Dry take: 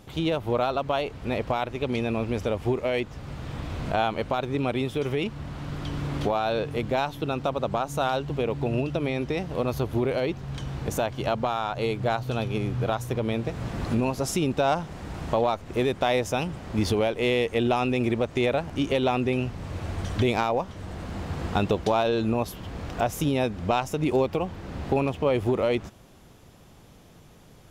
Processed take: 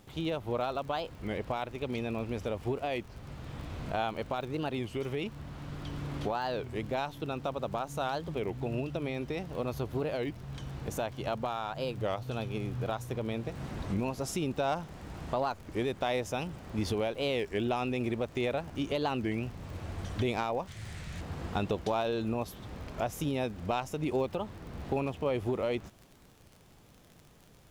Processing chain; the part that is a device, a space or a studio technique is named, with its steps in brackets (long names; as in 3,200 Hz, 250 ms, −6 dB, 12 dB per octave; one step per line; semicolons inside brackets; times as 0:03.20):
warped LP (wow of a warped record 33 1/3 rpm, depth 250 cents; surface crackle 39 per second −35 dBFS; pink noise bed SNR 34 dB)
0:20.67–0:21.21: octave-band graphic EQ 125/250/500/1,000/2,000/4,000/8,000 Hz +6/−7/−4/−5/+8/+4/+9 dB
level −7.5 dB